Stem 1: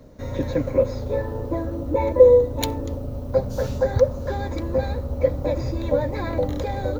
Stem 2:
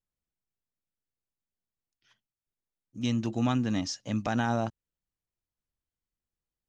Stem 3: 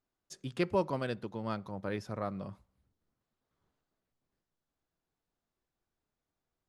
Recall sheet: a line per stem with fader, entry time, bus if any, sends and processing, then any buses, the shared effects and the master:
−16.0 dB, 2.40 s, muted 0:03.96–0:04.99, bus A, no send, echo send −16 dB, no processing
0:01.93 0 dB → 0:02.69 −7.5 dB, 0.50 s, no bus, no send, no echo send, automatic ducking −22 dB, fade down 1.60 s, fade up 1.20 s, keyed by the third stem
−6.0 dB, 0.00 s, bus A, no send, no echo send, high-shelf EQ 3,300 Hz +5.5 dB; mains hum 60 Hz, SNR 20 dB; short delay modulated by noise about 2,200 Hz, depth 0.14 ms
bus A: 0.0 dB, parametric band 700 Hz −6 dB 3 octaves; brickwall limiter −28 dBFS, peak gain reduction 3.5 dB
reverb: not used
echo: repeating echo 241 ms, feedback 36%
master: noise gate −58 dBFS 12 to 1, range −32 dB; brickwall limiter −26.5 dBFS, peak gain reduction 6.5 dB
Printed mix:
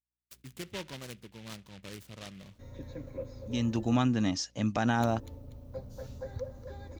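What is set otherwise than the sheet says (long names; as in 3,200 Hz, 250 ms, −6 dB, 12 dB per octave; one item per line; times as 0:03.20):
stem 2 0.0 dB → +8.0 dB
master: missing brickwall limiter −26.5 dBFS, peak gain reduction 6.5 dB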